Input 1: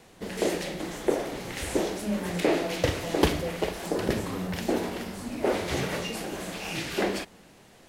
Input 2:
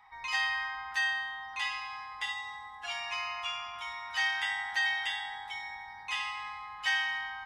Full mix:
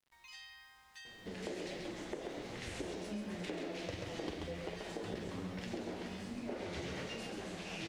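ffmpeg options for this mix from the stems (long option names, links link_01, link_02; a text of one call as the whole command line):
ffmpeg -i stem1.wav -i stem2.wav -filter_complex "[0:a]lowpass=6500,flanger=delay=8.2:depth=3.6:regen=50:speed=1.3:shape=sinusoidal,acompressor=threshold=-31dB:ratio=6,adelay=1050,volume=-0.5dB,asplit=2[link_01][link_02];[link_02]volume=-5dB[link_03];[1:a]acrossover=split=320|3000[link_04][link_05][link_06];[link_05]acompressor=threshold=-50dB:ratio=3[link_07];[link_04][link_07][link_06]amix=inputs=3:normalize=0,aeval=exprs='val(0)*gte(abs(val(0)),0.00282)':channel_layout=same,volume=-13dB[link_08];[link_03]aecho=0:1:135:1[link_09];[link_01][link_08][link_09]amix=inputs=3:normalize=0,equalizer=frequency=980:width_type=o:width=1.6:gain=-2.5,acompressor=threshold=-50dB:ratio=1.5" out.wav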